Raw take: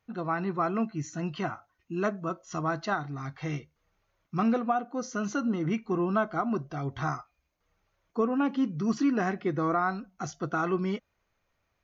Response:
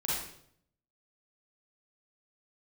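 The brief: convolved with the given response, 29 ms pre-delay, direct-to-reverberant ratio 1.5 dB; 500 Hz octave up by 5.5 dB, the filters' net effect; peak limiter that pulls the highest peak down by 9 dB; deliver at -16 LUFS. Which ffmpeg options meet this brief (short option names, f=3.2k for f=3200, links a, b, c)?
-filter_complex "[0:a]equalizer=f=500:t=o:g=7.5,alimiter=limit=-20dB:level=0:latency=1,asplit=2[a][b];[1:a]atrim=start_sample=2205,adelay=29[c];[b][c]afir=irnorm=-1:irlink=0,volume=-7.5dB[d];[a][d]amix=inputs=2:normalize=0,volume=12dB"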